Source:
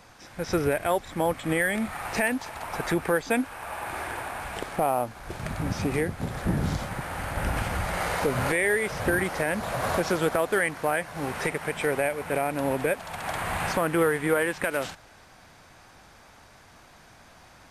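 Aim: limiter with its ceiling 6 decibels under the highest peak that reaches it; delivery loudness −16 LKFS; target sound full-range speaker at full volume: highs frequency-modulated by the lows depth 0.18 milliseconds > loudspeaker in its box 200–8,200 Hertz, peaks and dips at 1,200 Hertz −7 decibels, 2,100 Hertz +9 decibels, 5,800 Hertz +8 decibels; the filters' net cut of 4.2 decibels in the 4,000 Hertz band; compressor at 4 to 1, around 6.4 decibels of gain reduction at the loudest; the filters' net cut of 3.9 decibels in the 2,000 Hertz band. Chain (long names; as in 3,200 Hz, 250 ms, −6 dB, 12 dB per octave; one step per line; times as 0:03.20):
parametric band 2,000 Hz −7.5 dB
parametric band 4,000 Hz −6 dB
downward compressor 4 to 1, threshold −28 dBFS
brickwall limiter −23.5 dBFS
highs frequency-modulated by the lows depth 0.18 ms
loudspeaker in its box 200–8,200 Hz, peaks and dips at 1,200 Hz −7 dB, 2,100 Hz +9 dB, 5,800 Hz +8 dB
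level +19.5 dB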